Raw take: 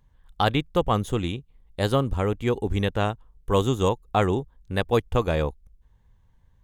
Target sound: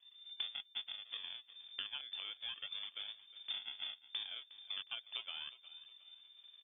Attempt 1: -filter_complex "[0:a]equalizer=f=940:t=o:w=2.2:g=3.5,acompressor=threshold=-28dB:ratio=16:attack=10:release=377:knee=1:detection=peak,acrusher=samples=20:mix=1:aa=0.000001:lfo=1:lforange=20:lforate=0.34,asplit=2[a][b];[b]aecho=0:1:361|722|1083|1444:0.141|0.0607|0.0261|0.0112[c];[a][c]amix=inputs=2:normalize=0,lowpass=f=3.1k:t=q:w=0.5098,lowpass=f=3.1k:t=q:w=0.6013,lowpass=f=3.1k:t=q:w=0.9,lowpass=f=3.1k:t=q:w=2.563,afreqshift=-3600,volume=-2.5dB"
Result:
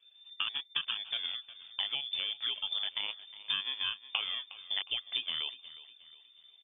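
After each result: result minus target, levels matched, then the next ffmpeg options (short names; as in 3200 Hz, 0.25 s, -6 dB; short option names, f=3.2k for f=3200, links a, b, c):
compressor: peak gain reduction -10 dB; decimation with a swept rate: distortion -6 dB
-filter_complex "[0:a]equalizer=f=940:t=o:w=2.2:g=3.5,acompressor=threshold=-38.5dB:ratio=16:attack=10:release=377:knee=1:detection=peak,acrusher=samples=20:mix=1:aa=0.000001:lfo=1:lforange=20:lforate=0.34,asplit=2[a][b];[b]aecho=0:1:361|722|1083|1444:0.141|0.0607|0.0261|0.0112[c];[a][c]amix=inputs=2:normalize=0,lowpass=f=3.1k:t=q:w=0.5098,lowpass=f=3.1k:t=q:w=0.6013,lowpass=f=3.1k:t=q:w=0.9,lowpass=f=3.1k:t=q:w=2.563,afreqshift=-3600,volume=-2.5dB"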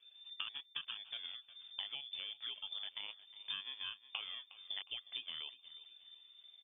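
decimation with a swept rate: distortion -6 dB
-filter_complex "[0:a]equalizer=f=940:t=o:w=2.2:g=3.5,acompressor=threshold=-38.5dB:ratio=16:attack=10:release=377:knee=1:detection=peak,acrusher=samples=48:mix=1:aa=0.000001:lfo=1:lforange=48:lforate=0.34,asplit=2[a][b];[b]aecho=0:1:361|722|1083|1444:0.141|0.0607|0.0261|0.0112[c];[a][c]amix=inputs=2:normalize=0,lowpass=f=3.1k:t=q:w=0.5098,lowpass=f=3.1k:t=q:w=0.6013,lowpass=f=3.1k:t=q:w=0.9,lowpass=f=3.1k:t=q:w=2.563,afreqshift=-3600,volume=-2.5dB"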